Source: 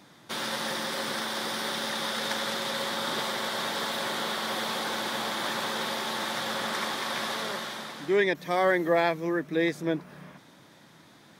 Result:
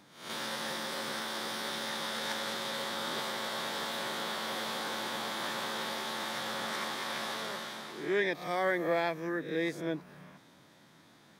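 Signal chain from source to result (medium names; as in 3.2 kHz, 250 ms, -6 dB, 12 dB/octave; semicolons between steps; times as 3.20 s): reverse spectral sustain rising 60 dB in 0.55 s; trim -7 dB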